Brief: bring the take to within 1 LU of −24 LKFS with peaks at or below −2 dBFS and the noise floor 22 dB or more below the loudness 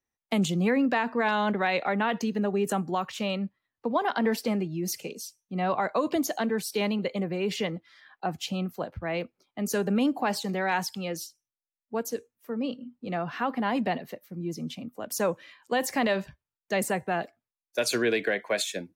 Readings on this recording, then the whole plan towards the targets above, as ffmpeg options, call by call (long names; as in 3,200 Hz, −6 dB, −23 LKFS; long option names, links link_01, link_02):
integrated loudness −29.0 LKFS; sample peak −16.0 dBFS; target loudness −24.0 LKFS
→ -af "volume=5dB"